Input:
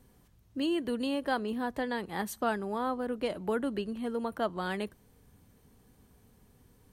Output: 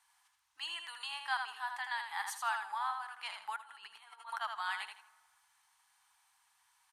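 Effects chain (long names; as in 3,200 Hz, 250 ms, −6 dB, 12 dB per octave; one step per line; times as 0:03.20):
low-pass filter 11,000 Hz 24 dB per octave
repeating echo 80 ms, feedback 26%, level −6 dB
0:03.56–0:04.41: compressor whose output falls as the input rises −37 dBFS, ratio −0.5
elliptic high-pass filter 850 Hz, stop band 40 dB
convolution reverb RT60 1.7 s, pre-delay 37 ms, DRR 20 dB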